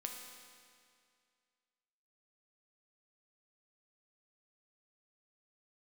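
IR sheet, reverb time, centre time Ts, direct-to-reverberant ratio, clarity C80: 2.2 s, 69 ms, 1.5 dB, 4.5 dB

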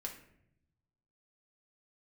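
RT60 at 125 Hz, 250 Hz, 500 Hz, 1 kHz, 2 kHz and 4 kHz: 1.6, 1.2, 0.85, 0.60, 0.65, 0.45 seconds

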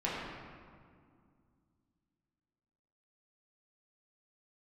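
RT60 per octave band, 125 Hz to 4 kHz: 3.1, 3.2, 2.2, 2.1, 1.6, 1.2 seconds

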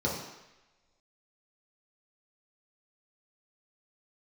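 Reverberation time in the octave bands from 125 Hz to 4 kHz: 0.80, 0.85, 0.95, 1.1, 1.2, 1.1 seconds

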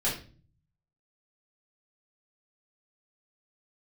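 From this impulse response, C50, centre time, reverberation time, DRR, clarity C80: 6.0 dB, 31 ms, 0.40 s, −8.0 dB, 11.5 dB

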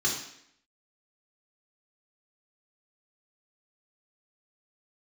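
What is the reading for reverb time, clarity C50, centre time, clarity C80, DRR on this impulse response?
0.70 s, 4.5 dB, 37 ms, 8.0 dB, −4.5 dB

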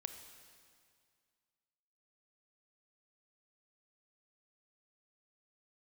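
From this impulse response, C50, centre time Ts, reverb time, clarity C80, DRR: 8.0 dB, 30 ms, 2.1 s, 9.0 dB, 7.0 dB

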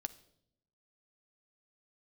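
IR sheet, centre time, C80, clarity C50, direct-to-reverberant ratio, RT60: 3 ms, 21.0 dB, 17.5 dB, 10.5 dB, 0.75 s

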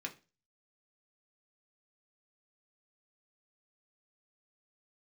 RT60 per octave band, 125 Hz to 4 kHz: 0.45, 0.35, 0.30, 0.30, 0.30, 0.30 seconds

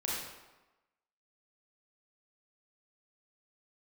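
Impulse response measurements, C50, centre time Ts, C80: −1.5 dB, 79 ms, 2.0 dB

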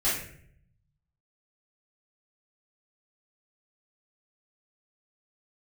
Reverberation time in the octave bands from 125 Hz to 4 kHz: 1.5, 0.95, 0.70, 0.50, 0.60, 0.45 seconds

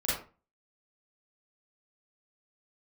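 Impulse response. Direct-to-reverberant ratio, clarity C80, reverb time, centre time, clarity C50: −9.5 dB, 8.0 dB, 0.35 s, 53 ms, 0.5 dB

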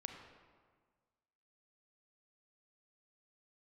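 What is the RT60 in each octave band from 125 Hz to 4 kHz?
1.8, 1.7, 1.6, 1.6, 1.3, 1.0 seconds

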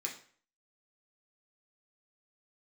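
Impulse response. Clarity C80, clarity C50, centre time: 13.5 dB, 8.5 dB, 19 ms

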